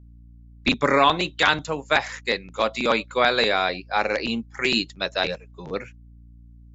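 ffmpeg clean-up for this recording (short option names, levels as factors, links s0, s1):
-af "bandreject=f=58.2:t=h:w=4,bandreject=f=116.4:t=h:w=4,bandreject=f=174.6:t=h:w=4,bandreject=f=232.8:t=h:w=4,bandreject=f=291:t=h:w=4"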